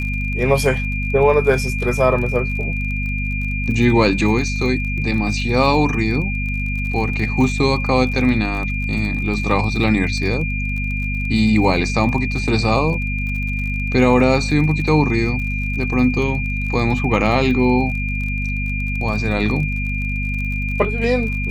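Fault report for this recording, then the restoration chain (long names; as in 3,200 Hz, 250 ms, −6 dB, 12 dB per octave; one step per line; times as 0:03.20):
surface crackle 34 per second −27 dBFS
mains hum 50 Hz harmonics 5 −23 dBFS
whistle 2,400 Hz −25 dBFS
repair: click removal
notch filter 2,400 Hz, Q 30
hum removal 50 Hz, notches 5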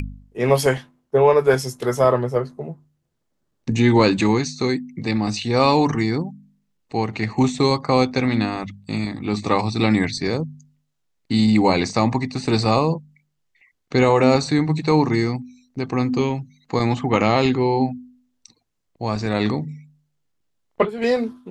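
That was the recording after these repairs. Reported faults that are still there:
none of them is left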